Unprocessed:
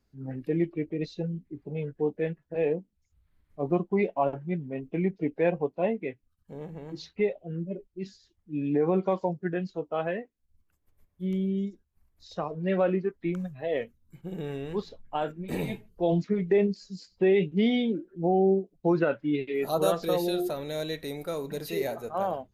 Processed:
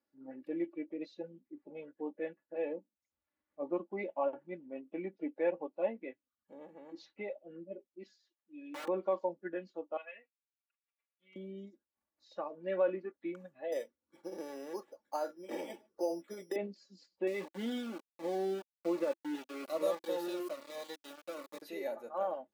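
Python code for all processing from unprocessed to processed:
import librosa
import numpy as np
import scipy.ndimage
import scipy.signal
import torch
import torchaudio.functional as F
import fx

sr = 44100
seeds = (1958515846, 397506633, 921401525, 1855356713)

y = fx.chain(x, sr, fx.highpass(hz=810.0, slope=6),
    fx.overflow_wrap(gain_db=30.0), at=(8.03, 8.88))
y = fx.chain(y, sr, fx.bandpass_q(hz=2500.0, q=2.3),
    fx.comb(ms=4.3, depth=0.89), at=(9.97, 11.36))
y = fx.chain(y, sr, fx.resample_bad(factor=8, down='filtered', up='hold'),
    fx.low_shelf_res(hz=290.0, db=-6.0, q=1.5),
    fx.band_squash(depth_pct=70), at=(13.72, 16.56))
y = fx.chain(y, sr, fx.sample_gate(floor_db=-30.5),
    fx.notch_cascade(direction='falling', hz=1.2), at=(17.27, 21.62))
y = scipy.signal.sosfilt(scipy.signal.butter(2, 380.0, 'highpass', fs=sr, output='sos'), y)
y = fx.high_shelf(y, sr, hz=2600.0, db=-11.0)
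y = y + 0.72 * np.pad(y, (int(3.5 * sr / 1000.0), 0))[:len(y)]
y = F.gain(torch.from_numpy(y), -7.0).numpy()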